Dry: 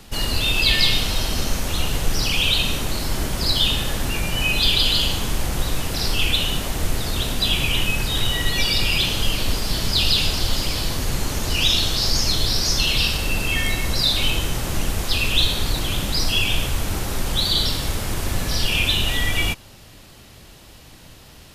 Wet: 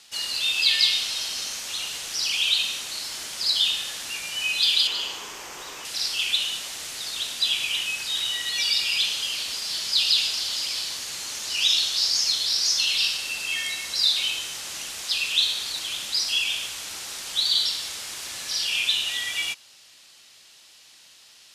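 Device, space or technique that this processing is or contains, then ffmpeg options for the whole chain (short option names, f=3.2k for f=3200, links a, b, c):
piezo pickup straight into a mixer: -filter_complex "[0:a]asettb=1/sr,asplit=3[a][b][c];[a]atrim=end=4.874[d];[b]atrim=start=4.87:end=5.85,asetpts=PTS-STARTPTS,afade=t=in:d=0.004:c=qsin,afade=t=out:st=0.976:d=0.004:c=qsin,equalizer=f=100:t=o:w=0.67:g=-5,equalizer=f=400:t=o:w=0.67:g=9,equalizer=f=1k:t=o:w=0.67:g=7,equalizer=f=4k:t=o:w=0.67:g=-9,equalizer=f=10k:t=o:w=0.67:g=-11[e];[c]atrim=start=5.846[f];[d][e]acrossfade=d=0.004:c1=hsin:c2=qsin[g];[g][f]acrossfade=d=0.004:c1=qsin:c2=hsin,lowpass=5.9k,aderivative,volume=5dB"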